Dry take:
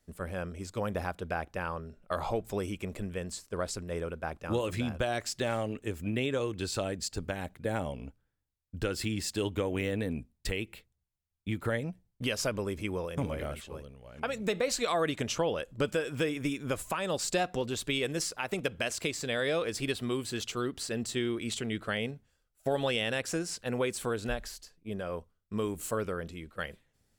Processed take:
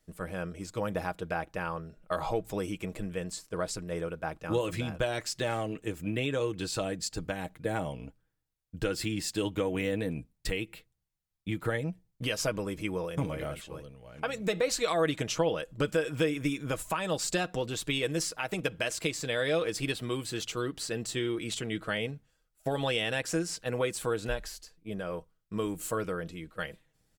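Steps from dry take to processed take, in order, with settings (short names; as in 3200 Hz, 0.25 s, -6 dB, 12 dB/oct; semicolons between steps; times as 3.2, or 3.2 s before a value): comb 6.3 ms, depth 46%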